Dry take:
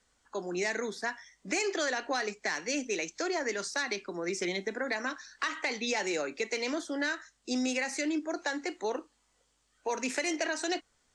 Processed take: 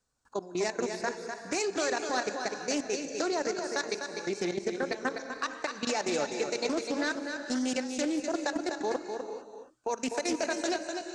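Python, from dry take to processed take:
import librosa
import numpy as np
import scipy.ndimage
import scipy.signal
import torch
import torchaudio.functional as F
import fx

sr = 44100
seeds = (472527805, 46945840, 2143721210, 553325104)

p1 = fx.graphic_eq_31(x, sr, hz=(125, 2000, 3150), db=(11, -11, -9))
p2 = fx.level_steps(p1, sr, step_db=17)
p3 = p2 + fx.echo_single(p2, sr, ms=250, db=-6.5, dry=0)
p4 = fx.rev_gated(p3, sr, seeds[0], gate_ms=500, shape='rising', drr_db=9.0)
p5 = fx.doppler_dist(p4, sr, depth_ms=0.14)
y = p5 * 10.0 ** (4.5 / 20.0)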